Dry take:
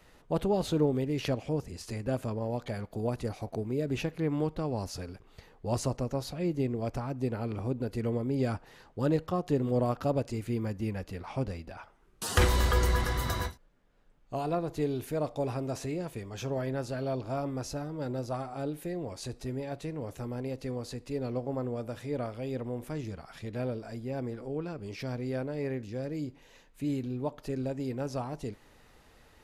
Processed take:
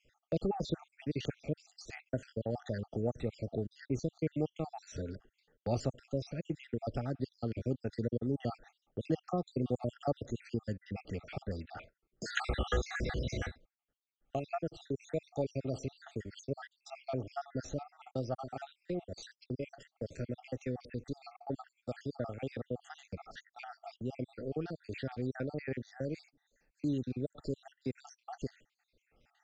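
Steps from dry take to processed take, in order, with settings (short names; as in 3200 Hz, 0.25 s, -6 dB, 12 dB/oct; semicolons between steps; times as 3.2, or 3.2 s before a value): random spectral dropouts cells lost 65%; elliptic low-pass 7000 Hz, stop band 50 dB; gate -55 dBFS, range -19 dB; Butterworth band-stop 1000 Hz, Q 3.4; three-band squash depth 40%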